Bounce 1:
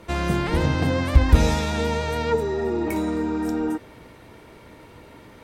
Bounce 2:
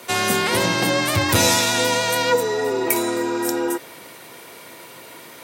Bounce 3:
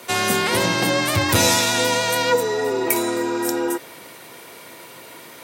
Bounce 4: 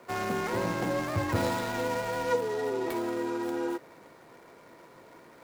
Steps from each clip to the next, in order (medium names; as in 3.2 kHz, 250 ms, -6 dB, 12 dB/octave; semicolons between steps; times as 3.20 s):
frequency shift +36 Hz; high-pass 93 Hz; RIAA curve recording; trim +6 dB
no audible change
median filter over 15 samples; trim -8.5 dB